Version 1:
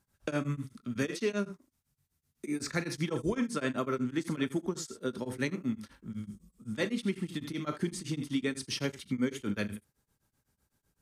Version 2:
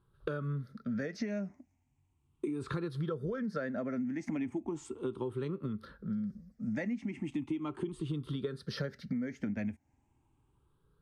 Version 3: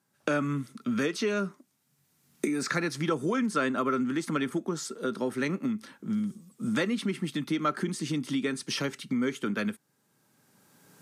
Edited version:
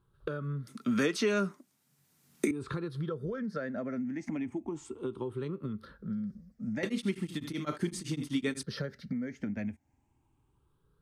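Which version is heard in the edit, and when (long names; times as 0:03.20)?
2
0:00.67–0:02.51: punch in from 3
0:06.83–0:08.63: punch in from 1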